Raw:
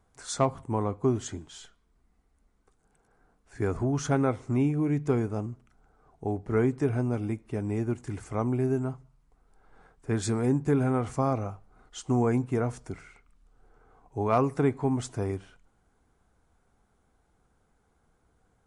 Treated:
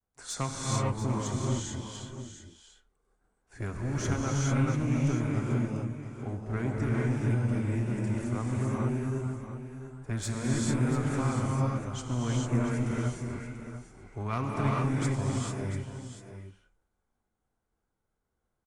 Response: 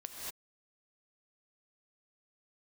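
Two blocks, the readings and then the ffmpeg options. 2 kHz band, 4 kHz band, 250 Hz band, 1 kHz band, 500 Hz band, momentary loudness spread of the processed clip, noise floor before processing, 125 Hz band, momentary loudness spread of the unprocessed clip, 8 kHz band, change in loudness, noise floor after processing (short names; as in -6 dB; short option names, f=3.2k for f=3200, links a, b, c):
+2.5 dB, +3.5 dB, -2.0 dB, -3.0 dB, -7.0 dB, 13 LU, -70 dBFS, +2.0 dB, 14 LU, +3.5 dB, -2.0 dB, -82 dBFS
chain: -filter_complex "[0:a]agate=range=-33dB:threshold=-56dB:ratio=3:detection=peak,acrossover=split=260|1100|2400[a][b][c][d];[b]acompressor=threshold=-43dB:ratio=6[e];[a][e][c][d]amix=inputs=4:normalize=0,aeval=exprs='clip(val(0),-1,0.0316)':c=same,aecho=1:1:690:0.299[f];[1:a]atrim=start_sample=2205,asetrate=23814,aresample=44100[g];[f][g]afir=irnorm=-1:irlink=0"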